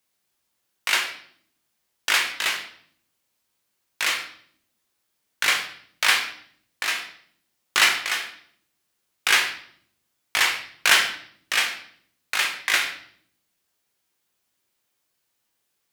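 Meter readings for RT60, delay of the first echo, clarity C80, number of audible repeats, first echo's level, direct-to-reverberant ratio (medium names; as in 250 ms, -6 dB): 0.60 s, no echo, 12.0 dB, no echo, no echo, 2.0 dB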